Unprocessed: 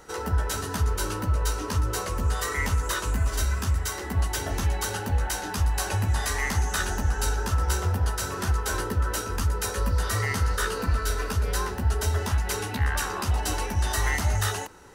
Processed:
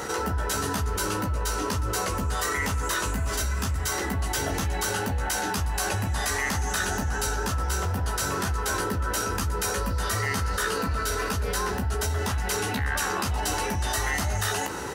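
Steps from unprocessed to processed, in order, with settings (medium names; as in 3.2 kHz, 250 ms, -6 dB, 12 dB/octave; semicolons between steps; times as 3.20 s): high-pass 77 Hz 12 dB/octave; doubling 15 ms -9.5 dB; level flattener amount 70%; trim -3.5 dB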